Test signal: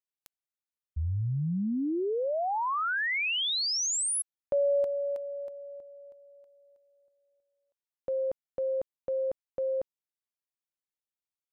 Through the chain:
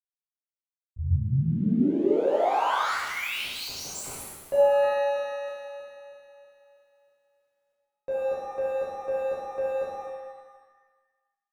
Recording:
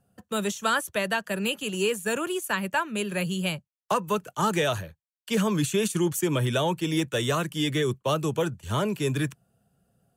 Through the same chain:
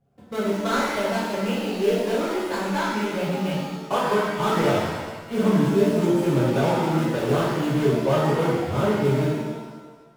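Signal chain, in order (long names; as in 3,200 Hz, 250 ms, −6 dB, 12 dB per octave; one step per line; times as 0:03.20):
running median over 25 samples
low-shelf EQ 150 Hz −5.5 dB
reverb with rising layers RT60 1.3 s, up +7 semitones, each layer −8 dB, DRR −8 dB
level −2 dB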